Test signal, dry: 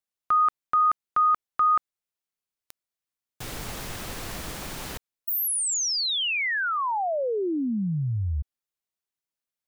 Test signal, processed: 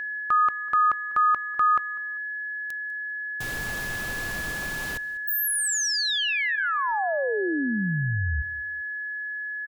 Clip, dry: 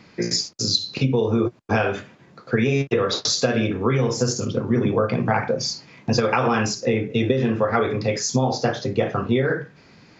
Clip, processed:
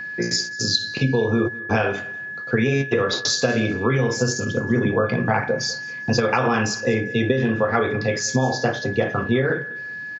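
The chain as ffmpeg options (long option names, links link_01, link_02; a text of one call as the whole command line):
ffmpeg -i in.wav -af "aeval=exprs='val(0)+0.0355*sin(2*PI*1700*n/s)':channel_layout=same,aecho=1:1:198|396:0.0944|0.0255" out.wav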